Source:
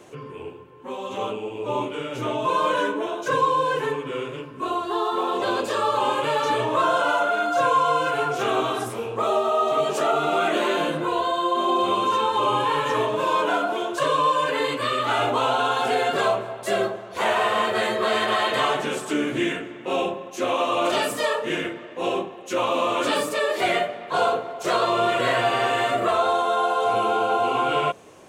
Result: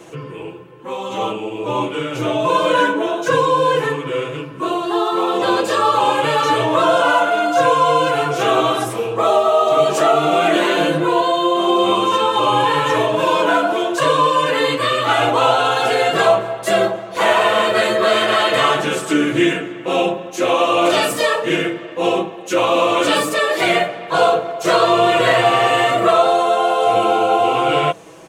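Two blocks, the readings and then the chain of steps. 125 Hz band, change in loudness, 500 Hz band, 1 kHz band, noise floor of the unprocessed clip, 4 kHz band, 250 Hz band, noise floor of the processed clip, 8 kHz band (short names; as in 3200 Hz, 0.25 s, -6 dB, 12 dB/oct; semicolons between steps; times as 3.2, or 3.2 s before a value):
+8.5 dB, +7.0 dB, +7.5 dB, +6.0 dB, -39 dBFS, +7.5 dB, +8.5 dB, -32 dBFS, +7.5 dB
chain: comb 6.1 ms; gain +6 dB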